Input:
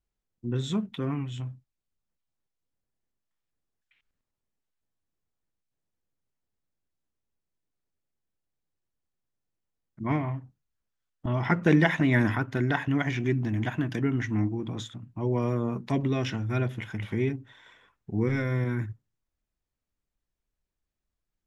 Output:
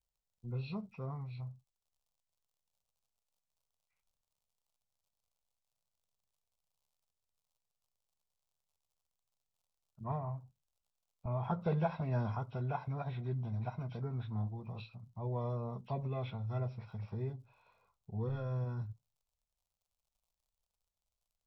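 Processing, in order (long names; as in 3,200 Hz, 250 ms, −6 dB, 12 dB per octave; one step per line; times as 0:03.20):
hearing-aid frequency compression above 1,300 Hz 1.5 to 1
surface crackle 83 per second −61 dBFS
phaser with its sweep stopped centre 730 Hz, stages 4
level −6 dB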